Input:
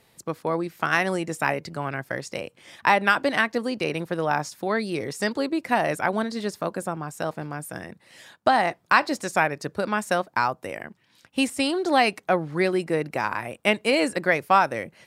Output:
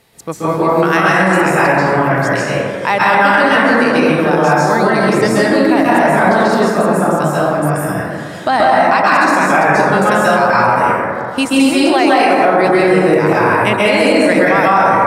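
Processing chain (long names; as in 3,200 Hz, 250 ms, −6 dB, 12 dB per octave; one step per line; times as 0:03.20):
0:11.45–0:12.65: high-pass filter 250 Hz 12 dB per octave
dense smooth reverb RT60 2.3 s, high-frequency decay 0.3×, pre-delay 120 ms, DRR −8.5 dB
boost into a limiter +7.5 dB
level −1 dB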